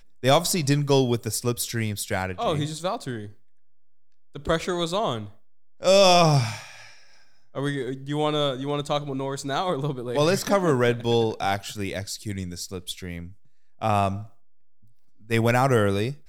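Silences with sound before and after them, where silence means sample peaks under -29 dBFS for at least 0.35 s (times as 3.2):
3.25–4.36
5.23–5.83
6.59–7.56
13.22–13.82
14.2–15.31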